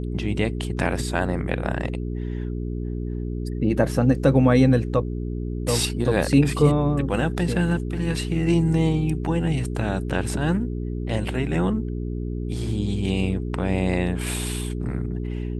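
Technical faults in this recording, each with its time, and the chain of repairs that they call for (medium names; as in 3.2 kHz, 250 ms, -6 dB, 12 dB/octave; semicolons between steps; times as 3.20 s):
hum 60 Hz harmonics 7 -28 dBFS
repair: de-hum 60 Hz, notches 7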